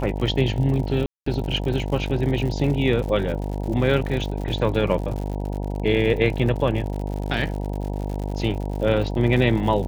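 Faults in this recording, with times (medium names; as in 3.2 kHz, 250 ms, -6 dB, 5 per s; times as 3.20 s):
buzz 50 Hz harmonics 19 -27 dBFS
crackle 92 per s -30 dBFS
1.06–1.26 s: dropout 204 ms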